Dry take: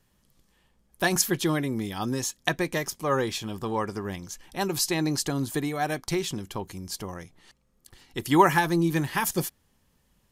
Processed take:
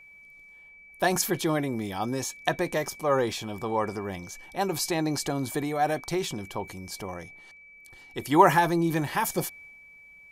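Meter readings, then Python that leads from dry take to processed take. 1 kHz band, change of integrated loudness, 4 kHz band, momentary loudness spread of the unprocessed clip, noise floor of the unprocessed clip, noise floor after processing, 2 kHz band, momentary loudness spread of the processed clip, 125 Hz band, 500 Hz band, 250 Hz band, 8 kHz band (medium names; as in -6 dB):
+2.0 dB, -0.5 dB, -3.0 dB, 13 LU, -68 dBFS, -52 dBFS, -1.5 dB, 14 LU, -2.5 dB, +1.5 dB, -1.5 dB, -3.0 dB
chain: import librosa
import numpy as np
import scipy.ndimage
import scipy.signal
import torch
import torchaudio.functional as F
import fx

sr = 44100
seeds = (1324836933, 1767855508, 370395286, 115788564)

y = x + 10.0 ** (-46.0 / 20.0) * np.sin(2.0 * np.pi * 2300.0 * np.arange(len(x)) / sr)
y = fx.transient(y, sr, attack_db=-1, sustain_db=4)
y = fx.peak_eq(y, sr, hz=670.0, db=8.0, octaves=1.4)
y = y * librosa.db_to_amplitude(-3.5)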